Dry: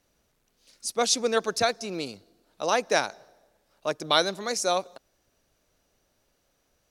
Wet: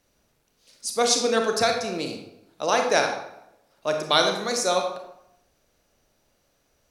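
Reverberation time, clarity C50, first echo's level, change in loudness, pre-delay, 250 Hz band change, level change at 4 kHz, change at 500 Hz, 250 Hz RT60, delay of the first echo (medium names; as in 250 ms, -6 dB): 0.80 s, 5.0 dB, no echo, +3.0 dB, 27 ms, +3.5 dB, +3.0 dB, +3.5 dB, 0.90 s, no echo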